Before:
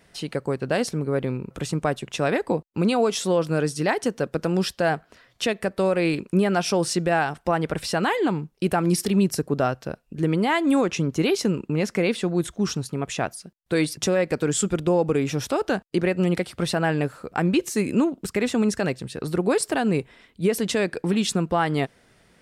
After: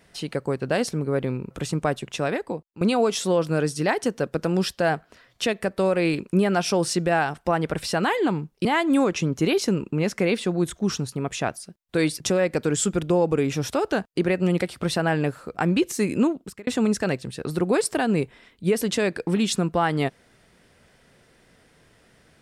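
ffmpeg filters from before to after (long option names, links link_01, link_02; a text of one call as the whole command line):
ffmpeg -i in.wav -filter_complex "[0:a]asplit=4[link_01][link_02][link_03][link_04];[link_01]atrim=end=2.81,asetpts=PTS-STARTPTS,afade=type=out:start_time=2.04:duration=0.77:silence=0.16788[link_05];[link_02]atrim=start=2.81:end=8.652,asetpts=PTS-STARTPTS,afade=type=in:duration=0.004:curve=hsin:silence=0.16788[link_06];[link_03]atrim=start=10.418:end=18.44,asetpts=PTS-STARTPTS,afade=type=out:start_time=7.602:duration=0.42[link_07];[link_04]atrim=start=18.44,asetpts=PTS-STARTPTS,afade=type=in:duration=0.004:curve=hsin[link_08];[link_05][link_06]concat=n=2:v=0:a=1[link_09];[link_07][link_08]concat=n=2:v=0:a=1[link_10];[link_09][link_10]acrossfade=duration=0.004:curve1=hsin:curve2=hsin" out.wav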